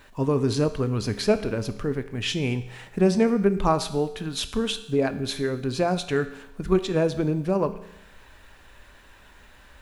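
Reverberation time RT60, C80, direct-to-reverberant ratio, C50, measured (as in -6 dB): 0.85 s, 15.5 dB, 10.0 dB, 13.5 dB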